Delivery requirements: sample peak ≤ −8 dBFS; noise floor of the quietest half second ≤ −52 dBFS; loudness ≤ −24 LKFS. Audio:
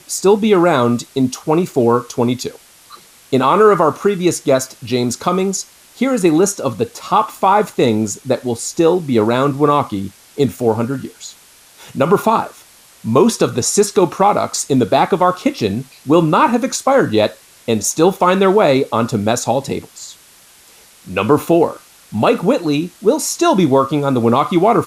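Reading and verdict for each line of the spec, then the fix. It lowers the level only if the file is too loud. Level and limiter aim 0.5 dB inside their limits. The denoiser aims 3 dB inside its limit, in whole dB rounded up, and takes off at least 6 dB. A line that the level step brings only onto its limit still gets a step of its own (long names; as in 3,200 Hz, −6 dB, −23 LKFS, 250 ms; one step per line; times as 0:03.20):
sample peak −1.5 dBFS: out of spec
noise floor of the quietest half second −46 dBFS: out of spec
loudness −15.5 LKFS: out of spec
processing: level −9 dB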